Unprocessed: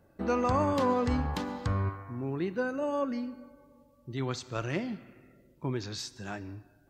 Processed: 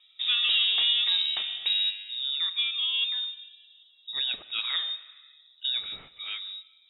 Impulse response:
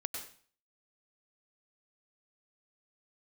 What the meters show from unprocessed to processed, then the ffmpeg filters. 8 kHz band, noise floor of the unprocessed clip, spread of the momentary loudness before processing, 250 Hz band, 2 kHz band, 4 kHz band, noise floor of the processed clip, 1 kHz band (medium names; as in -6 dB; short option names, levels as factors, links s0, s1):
under -30 dB, -63 dBFS, 14 LU, under -30 dB, +6.5 dB, +24.0 dB, -60 dBFS, -15.5 dB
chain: -filter_complex "[0:a]asplit=2[s0][s1];[s1]aeval=exprs='clip(val(0),-1,0.0501)':c=same,volume=0.398[s2];[s0][s2]amix=inputs=2:normalize=0,lowpass=f=3300:t=q:w=0.5098,lowpass=f=3300:t=q:w=0.6013,lowpass=f=3300:t=q:w=0.9,lowpass=f=3300:t=q:w=2.563,afreqshift=-3900"